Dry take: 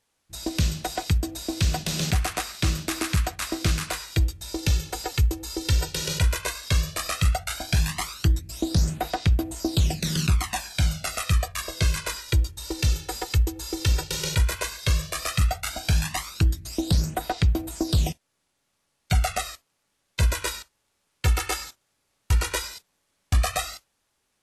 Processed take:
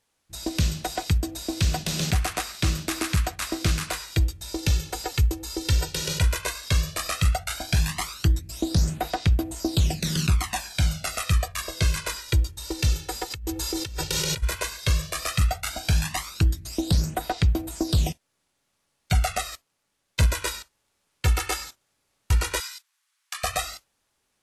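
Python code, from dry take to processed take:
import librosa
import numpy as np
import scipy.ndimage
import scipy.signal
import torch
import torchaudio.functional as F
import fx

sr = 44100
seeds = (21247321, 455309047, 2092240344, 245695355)

y = fx.over_compress(x, sr, threshold_db=-30.0, ratio=-1.0, at=(13.3, 14.42), fade=0.02)
y = fx.leveller(y, sr, passes=1, at=(19.52, 20.26))
y = fx.highpass(y, sr, hz=1100.0, slope=24, at=(22.6, 23.44))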